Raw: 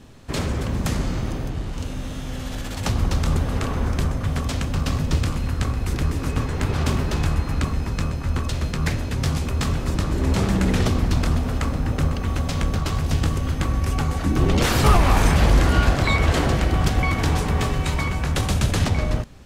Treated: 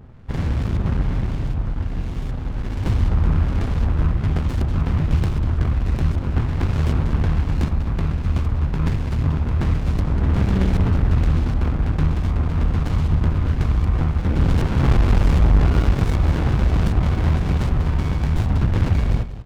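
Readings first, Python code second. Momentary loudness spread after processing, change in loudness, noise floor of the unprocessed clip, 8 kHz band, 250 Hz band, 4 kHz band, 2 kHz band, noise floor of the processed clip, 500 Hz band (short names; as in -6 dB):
5 LU, +2.0 dB, -30 dBFS, under -10 dB, +0.5 dB, -8.5 dB, -6.0 dB, -25 dBFS, -3.0 dB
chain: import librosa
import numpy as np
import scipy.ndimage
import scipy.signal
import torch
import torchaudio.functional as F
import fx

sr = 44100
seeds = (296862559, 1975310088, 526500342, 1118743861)

y = fx.peak_eq(x, sr, hz=420.0, db=-10.5, octaves=1.4)
y = fx.filter_lfo_lowpass(y, sr, shape='saw_up', hz=1.3, low_hz=980.0, high_hz=4200.0, q=1.4)
y = 10.0 ** (-14.5 / 20.0) * np.tanh(y / 10.0 ** (-14.5 / 20.0))
y = y + 10.0 ** (-13.0 / 20.0) * np.pad(y, (int(193 * sr / 1000.0), 0))[:len(y)]
y = fx.running_max(y, sr, window=65)
y = F.gain(torch.from_numpy(y), 6.0).numpy()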